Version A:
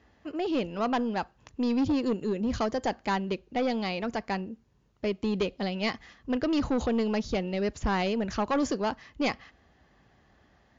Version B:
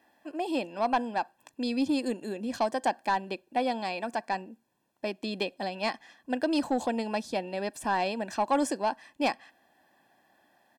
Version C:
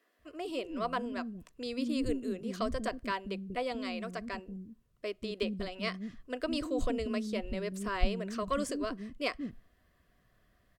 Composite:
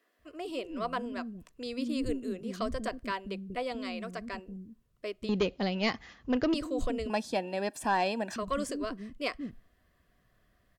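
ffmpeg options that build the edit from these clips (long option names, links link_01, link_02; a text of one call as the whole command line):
ffmpeg -i take0.wav -i take1.wav -i take2.wav -filter_complex "[2:a]asplit=3[link_01][link_02][link_03];[link_01]atrim=end=5.292[link_04];[0:a]atrim=start=5.288:end=6.542[link_05];[link_02]atrim=start=6.538:end=7.102[link_06];[1:a]atrim=start=7.098:end=8.362[link_07];[link_03]atrim=start=8.358[link_08];[link_04][link_05]acrossfade=duration=0.004:curve1=hsin:curve2=hsin[link_09];[link_09][link_06]acrossfade=duration=0.004:curve1=hsin:curve2=hsin[link_10];[link_10][link_07]acrossfade=duration=0.004:curve1=hsin:curve2=hsin[link_11];[link_11][link_08]acrossfade=duration=0.004:curve1=hsin:curve2=hsin" out.wav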